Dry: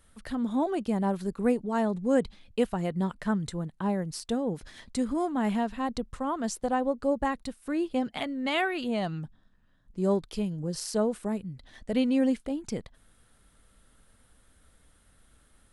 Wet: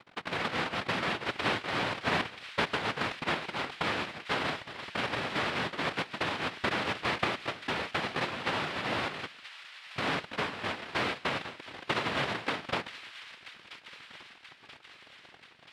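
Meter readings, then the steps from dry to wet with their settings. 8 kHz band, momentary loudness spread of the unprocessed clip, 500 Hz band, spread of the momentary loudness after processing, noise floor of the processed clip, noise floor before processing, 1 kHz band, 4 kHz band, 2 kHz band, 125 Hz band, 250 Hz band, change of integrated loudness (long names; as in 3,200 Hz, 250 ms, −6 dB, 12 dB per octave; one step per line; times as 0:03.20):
−6.5 dB, 9 LU, −6.5 dB, 17 LU, −56 dBFS, −63 dBFS, +0.5 dB, +7.5 dB, +7.5 dB, −5.0 dB, −11.5 dB, −2.5 dB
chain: compressor on every frequency bin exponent 0.4
centre clipping without the shift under −27.5 dBFS
high-shelf EQ 4,000 Hz +8.5 dB
transient designer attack +5 dB, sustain −4 dB
tube saturation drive 13 dB, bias 0.75
hum removal 129.2 Hz, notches 4
cochlear-implant simulation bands 1
high-frequency loss of the air 450 metres
on a send: delay with a high-pass on its return 982 ms, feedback 63%, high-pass 2,100 Hz, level −11 dB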